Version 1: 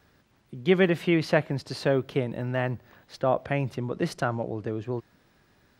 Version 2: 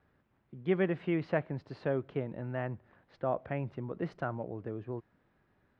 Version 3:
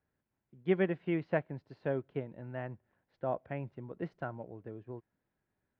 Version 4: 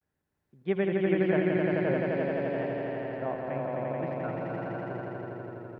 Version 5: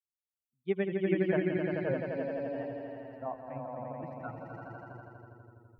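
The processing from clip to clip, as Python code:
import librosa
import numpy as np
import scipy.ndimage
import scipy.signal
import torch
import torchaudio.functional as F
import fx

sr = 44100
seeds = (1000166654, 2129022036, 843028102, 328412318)

y1 = scipy.signal.sosfilt(scipy.signal.butter(2, 2000.0, 'lowpass', fs=sr, output='sos'), x)
y1 = y1 * librosa.db_to_amplitude(-8.0)
y2 = fx.notch(y1, sr, hz=1200.0, q=10.0)
y2 = fx.upward_expand(y2, sr, threshold_db=-52.0, expansion=1.5)
y2 = y2 * librosa.db_to_amplitude(1.0)
y3 = fx.echo_swell(y2, sr, ms=84, loudest=5, wet_db=-3)
y3 = fx.vibrato(y3, sr, rate_hz=0.45, depth_cents=61.0)
y4 = fx.bin_expand(y3, sr, power=2.0)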